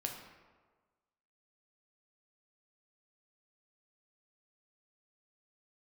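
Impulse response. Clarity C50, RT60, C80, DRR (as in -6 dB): 5.0 dB, 1.4 s, 7.0 dB, 1.0 dB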